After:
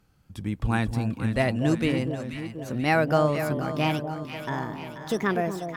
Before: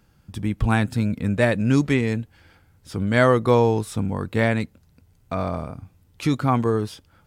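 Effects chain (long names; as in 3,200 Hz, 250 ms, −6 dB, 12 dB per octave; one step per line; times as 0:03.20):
gliding playback speed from 94% → 158%
delay that swaps between a low-pass and a high-pass 242 ms, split 950 Hz, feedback 75%, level −7 dB
level −5 dB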